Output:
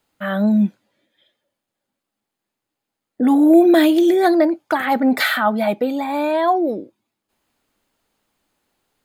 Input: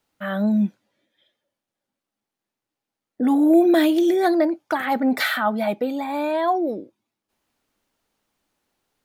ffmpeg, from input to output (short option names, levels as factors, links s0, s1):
-af "bandreject=f=5700:w=11,volume=1.58"